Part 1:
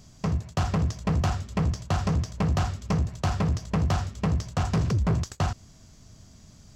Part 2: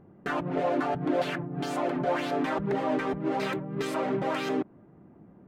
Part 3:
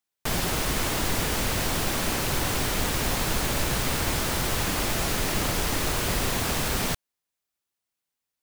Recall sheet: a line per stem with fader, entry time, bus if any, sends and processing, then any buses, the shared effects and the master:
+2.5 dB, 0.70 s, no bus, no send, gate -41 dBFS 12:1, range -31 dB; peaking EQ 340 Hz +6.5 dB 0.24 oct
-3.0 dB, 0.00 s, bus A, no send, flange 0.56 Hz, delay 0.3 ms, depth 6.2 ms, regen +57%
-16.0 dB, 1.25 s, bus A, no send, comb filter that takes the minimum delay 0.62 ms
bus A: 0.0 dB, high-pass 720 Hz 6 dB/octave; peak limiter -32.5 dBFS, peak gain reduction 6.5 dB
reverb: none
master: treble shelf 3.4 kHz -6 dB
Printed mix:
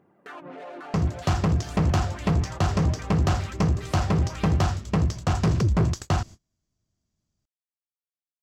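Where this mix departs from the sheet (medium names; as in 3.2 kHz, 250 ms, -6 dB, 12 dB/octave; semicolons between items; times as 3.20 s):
stem 2 -3.0 dB -> +5.5 dB; stem 3: muted; master: missing treble shelf 3.4 kHz -6 dB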